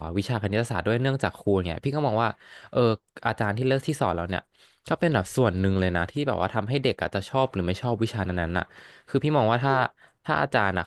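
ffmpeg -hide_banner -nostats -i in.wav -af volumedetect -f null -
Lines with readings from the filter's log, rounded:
mean_volume: -25.6 dB
max_volume: -6.6 dB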